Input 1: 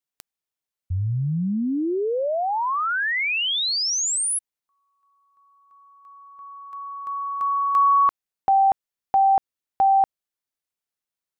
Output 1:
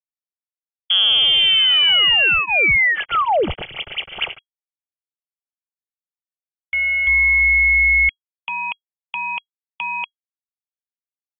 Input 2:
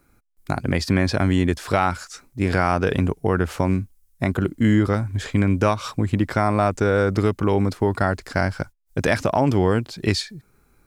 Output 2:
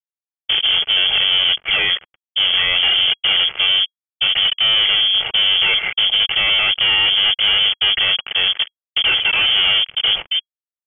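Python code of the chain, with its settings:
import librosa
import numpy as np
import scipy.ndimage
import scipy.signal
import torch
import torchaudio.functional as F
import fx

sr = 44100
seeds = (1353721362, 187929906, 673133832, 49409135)

y = scipy.signal.medfilt(x, 25)
y = fx.fuzz(y, sr, gain_db=40.0, gate_db=-41.0)
y = fx.notch_comb(y, sr, f0_hz=760.0)
y = fx.freq_invert(y, sr, carrier_hz=3300)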